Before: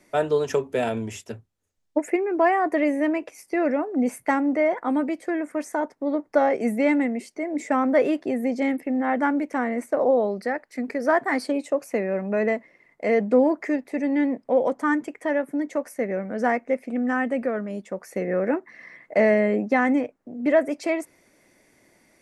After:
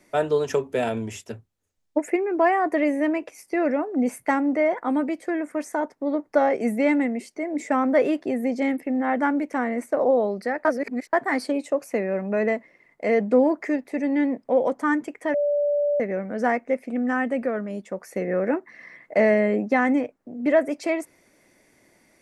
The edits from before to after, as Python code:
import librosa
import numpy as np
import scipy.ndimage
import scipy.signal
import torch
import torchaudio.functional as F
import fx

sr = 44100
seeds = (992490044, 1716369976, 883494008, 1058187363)

y = fx.edit(x, sr, fx.reverse_span(start_s=10.65, length_s=0.48),
    fx.bleep(start_s=15.34, length_s=0.66, hz=582.0, db=-19.0), tone=tone)